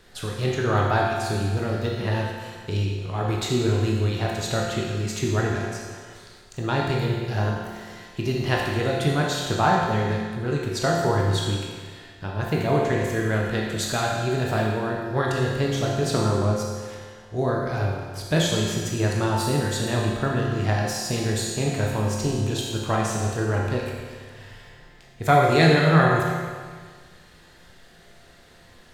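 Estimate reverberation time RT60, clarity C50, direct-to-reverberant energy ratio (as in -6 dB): 1.7 s, 0.0 dB, -3.0 dB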